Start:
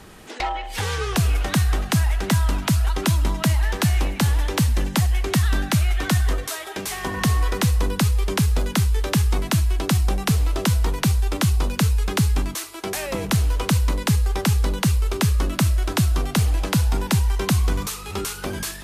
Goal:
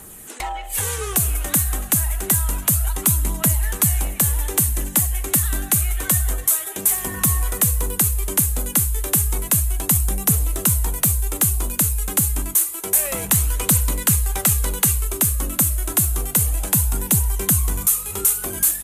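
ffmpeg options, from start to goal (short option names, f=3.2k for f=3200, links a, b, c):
-filter_complex "[0:a]asettb=1/sr,asplit=3[a][b][c];[a]atrim=end=13.054[d];[b]atrim=start=13.05:end=15.05,asetpts=PTS-STARTPTS,afade=t=in:d=0.004:c=qsin,afade=t=out:st=1.996:d=0.004:c=qsin,equalizer=f=2.4k:t=o:w=3:g=5[e];[c]atrim=start=15.046[f];[d][e]acrossfade=d=0.004:c1=hsin:c2=qsin[g];[g][f]acrossfade=d=0.004:c1=qsin:c2=hsin,acontrast=84,aexciter=amount=10.6:drive=4.1:freq=7.2k,aphaser=in_gain=1:out_gain=1:delay=3.9:decay=0.28:speed=0.29:type=triangular,aresample=32000,aresample=44100,volume=-10.5dB"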